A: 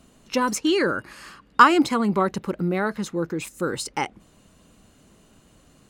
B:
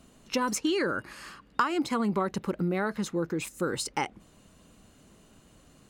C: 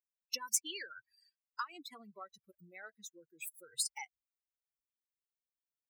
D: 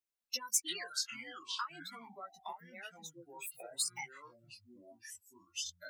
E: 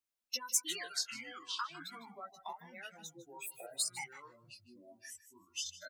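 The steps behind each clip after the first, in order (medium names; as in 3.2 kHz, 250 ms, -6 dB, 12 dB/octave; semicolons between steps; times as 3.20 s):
compression 5:1, threshold -22 dBFS, peak gain reduction 13 dB; trim -2 dB
expander on every frequency bin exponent 3; differentiator; trim +4.5 dB
chorus voices 4, 0.4 Hz, delay 15 ms, depth 3.1 ms; ever faster or slower copies 207 ms, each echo -6 st, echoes 2, each echo -6 dB; trim +3.5 dB
delay 154 ms -16 dB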